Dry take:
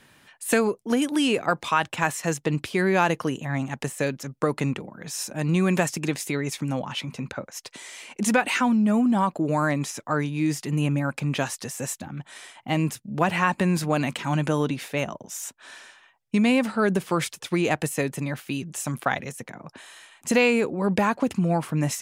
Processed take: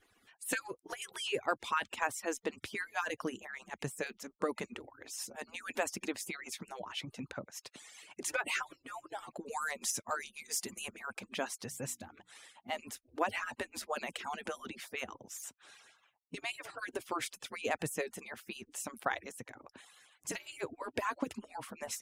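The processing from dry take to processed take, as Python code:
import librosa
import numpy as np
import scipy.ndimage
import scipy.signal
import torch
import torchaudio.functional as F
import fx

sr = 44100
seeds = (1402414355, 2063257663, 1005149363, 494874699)

y = fx.hpss_only(x, sr, part='percussive')
y = fx.bass_treble(y, sr, bass_db=4, treble_db=11, at=(9.46, 10.94))
y = fx.hum_notches(y, sr, base_hz=60, count=5, at=(11.68, 12.7))
y = y * librosa.db_to_amplitude(-9.0)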